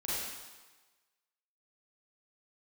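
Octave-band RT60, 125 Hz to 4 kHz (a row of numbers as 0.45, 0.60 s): 1.1, 1.1, 1.2, 1.3, 1.3, 1.2 s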